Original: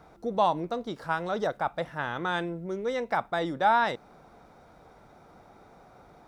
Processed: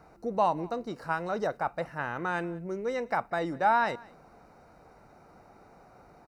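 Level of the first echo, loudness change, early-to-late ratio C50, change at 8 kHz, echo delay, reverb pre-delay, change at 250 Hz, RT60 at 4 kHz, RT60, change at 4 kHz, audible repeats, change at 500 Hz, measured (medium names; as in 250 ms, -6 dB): -23.0 dB, -1.5 dB, no reverb, no reading, 188 ms, no reverb, -1.5 dB, no reverb, no reverb, -7.5 dB, 1, -1.5 dB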